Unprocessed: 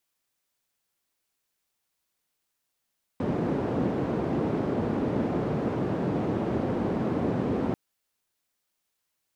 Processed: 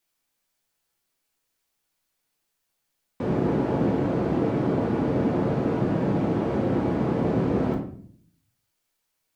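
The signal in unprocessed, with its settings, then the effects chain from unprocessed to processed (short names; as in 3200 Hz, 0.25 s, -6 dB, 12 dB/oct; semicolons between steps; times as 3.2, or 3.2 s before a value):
noise band 130–340 Hz, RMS -27.5 dBFS 4.54 s
shoebox room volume 68 m³, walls mixed, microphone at 0.68 m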